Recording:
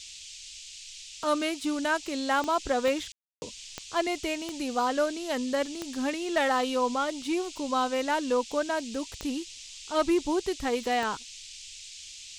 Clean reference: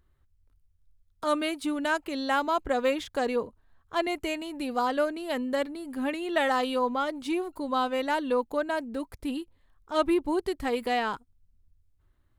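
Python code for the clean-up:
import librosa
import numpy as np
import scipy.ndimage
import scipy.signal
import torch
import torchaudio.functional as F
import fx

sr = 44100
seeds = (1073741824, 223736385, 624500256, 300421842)

y = fx.fix_declip(x, sr, threshold_db=-17.0)
y = fx.fix_declick_ar(y, sr, threshold=10.0)
y = fx.fix_ambience(y, sr, seeds[0], print_start_s=0.63, print_end_s=1.13, start_s=3.12, end_s=3.42)
y = fx.noise_reduce(y, sr, print_start_s=0.63, print_end_s=1.13, reduce_db=20.0)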